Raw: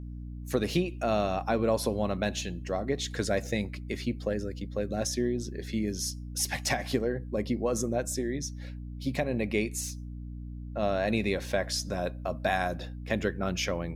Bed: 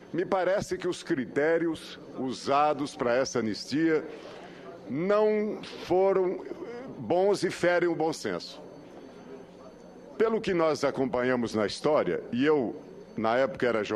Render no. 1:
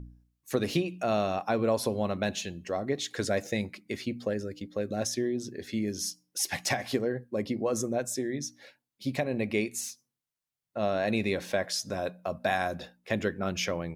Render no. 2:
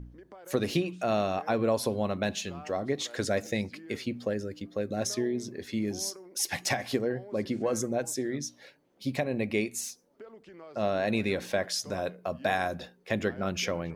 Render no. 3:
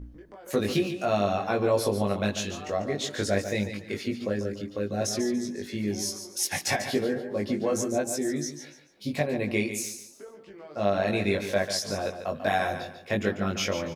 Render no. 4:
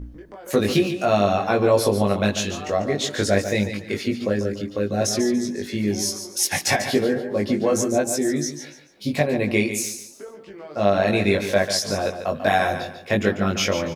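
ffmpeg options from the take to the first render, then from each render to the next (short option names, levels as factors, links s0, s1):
-af "bandreject=f=60:t=h:w=4,bandreject=f=120:t=h:w=4,bandreject=f=180:t=h:w=4,bandreject=f=240:t=h:w=4,bandreject=f=300:t=h:w=4"
-filter_complex "[1:a]volume=0.0708[s0];[0:a][s0]amix=inputs=2:normalize=0"
-filter_complex "[0:a]asplit=2[s0][s1];[s1]adelay=20,volume=0.794[s2];[s0][s2]amix=inputs=2:normalize=0,aecho=1:1:144|288|432:0.335|0.1|0.0301"
-af "volume=2.11"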